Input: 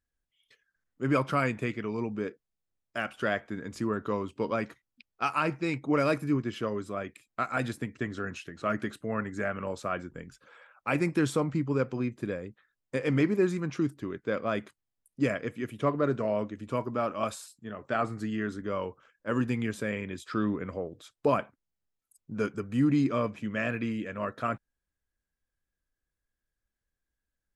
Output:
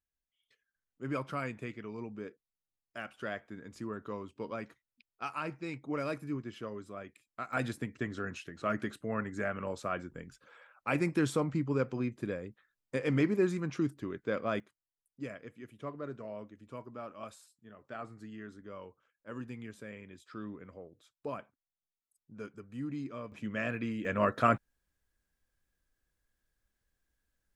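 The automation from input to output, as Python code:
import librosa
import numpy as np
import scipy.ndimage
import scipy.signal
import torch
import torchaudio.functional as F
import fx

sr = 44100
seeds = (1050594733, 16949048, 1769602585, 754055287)

y = fx.gain(x, sr, db=fx.steps((0.0, -9.5), (7.53, -3.0), (14.6, -14.0), (23.32, -4.0), (24.05, 5.0)))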